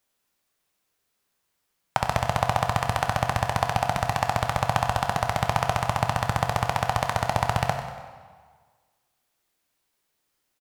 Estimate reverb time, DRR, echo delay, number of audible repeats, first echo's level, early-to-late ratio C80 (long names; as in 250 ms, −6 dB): 1.6 s, 4.5 dB, 95 ms, 2, −12.5 dB, 7.0 dB